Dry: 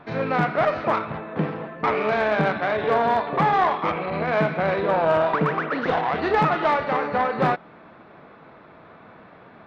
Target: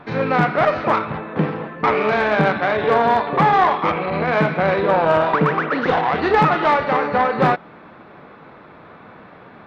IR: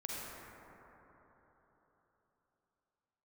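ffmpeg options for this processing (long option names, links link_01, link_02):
-af "bandreject=frequency=660:width=16,volume=5dB"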